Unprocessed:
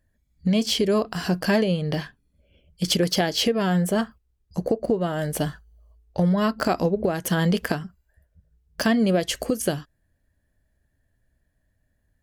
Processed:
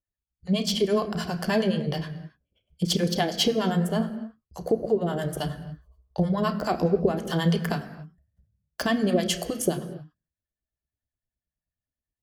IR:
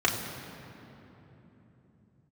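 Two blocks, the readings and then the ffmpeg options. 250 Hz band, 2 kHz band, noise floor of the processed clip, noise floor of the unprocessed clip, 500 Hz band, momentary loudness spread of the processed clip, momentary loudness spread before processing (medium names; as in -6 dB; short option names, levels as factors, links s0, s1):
-3.0 dB, -4.0 dB, under -85 dBFS, -71 dBFS, -1.5 dB, 16 LU, 10 LU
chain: -filter_complex "[0:a]agate=range=0.1:threshold=0.00158:ratio=16:detection=peak,acrossover=split=630[s0][s1];[s0]aeval=exprs='val(0)*(1-1/2+1/2*cos(2*PI*9.5*n/s))':c=same[s2];[s1]aeval=exprs='val(0)*(1-1/2-1/2*cos(2*PI*9.5*n/s))':c=same[s3];[s2][s3]amix=inputs=2:normalize=0,asplit=2[s4][s5];[1:a]atrim=start_sample=2205,afade=t=out:st=0.34:d=0.01,atrim=end_sample=15435[s6];[s5][s6]afir=irnorm=-1:irlink=0,volume=0.15[s7];[s4][s7]amix=inputs=2:normalize=0"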